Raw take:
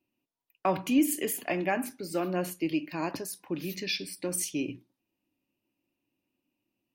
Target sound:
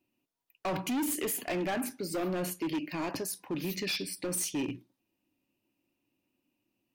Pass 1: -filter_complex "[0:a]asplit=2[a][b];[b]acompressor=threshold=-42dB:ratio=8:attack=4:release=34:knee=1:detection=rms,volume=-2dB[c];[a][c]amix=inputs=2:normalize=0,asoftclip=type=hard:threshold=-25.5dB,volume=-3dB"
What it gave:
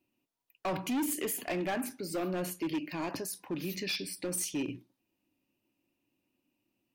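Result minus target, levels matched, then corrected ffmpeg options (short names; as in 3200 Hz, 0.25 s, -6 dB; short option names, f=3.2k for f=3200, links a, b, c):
compressor: peak gain reduction +10 dB
-filter_complex "[0:a]asplit=2[a][b];[b]acompressor=threshold=-30.5dB:ratio=8:attack=4:release=34:knee=1:detection=rms,volume=-2dB[c];[a][c]amix=inputs=2:normalize=0,asoftclip=type=hard:threshold=-25.5dB,volume=-3dB"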